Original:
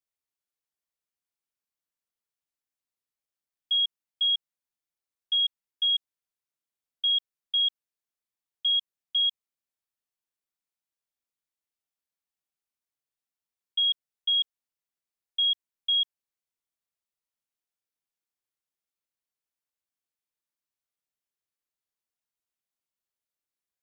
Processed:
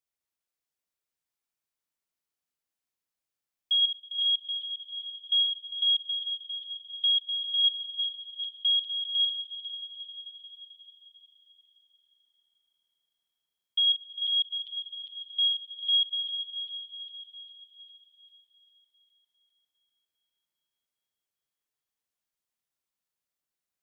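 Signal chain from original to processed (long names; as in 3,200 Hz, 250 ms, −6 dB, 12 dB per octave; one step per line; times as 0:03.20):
feedback delay that plays each chunk backwards 201 ms, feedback 74%, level −8 dB
echo that builds up and dies away 88 ms, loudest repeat 5, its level −18 dB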